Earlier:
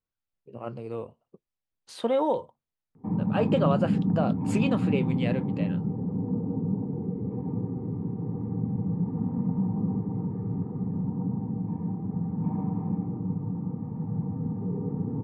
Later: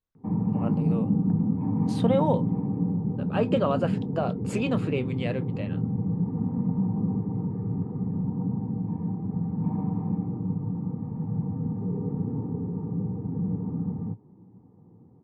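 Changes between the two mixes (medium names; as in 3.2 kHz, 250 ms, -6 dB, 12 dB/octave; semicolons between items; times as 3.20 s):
background: entry -2.80 s; master: add bass shelf 150 Hz +3 dB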